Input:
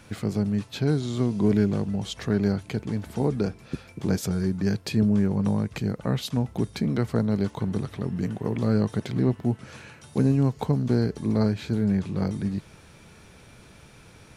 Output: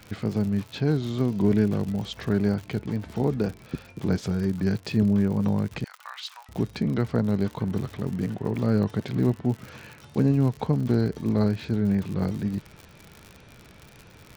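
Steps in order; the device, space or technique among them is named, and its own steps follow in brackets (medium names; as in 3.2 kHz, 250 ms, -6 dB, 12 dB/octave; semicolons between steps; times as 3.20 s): lo-fi chain (low-pass 4.6 kHz 12 dB/octave; wow and flutter; crackle 91 per s -33 dBFS); 5.84–6.49 s: steep high-pass 950 Hz 36 dB/octave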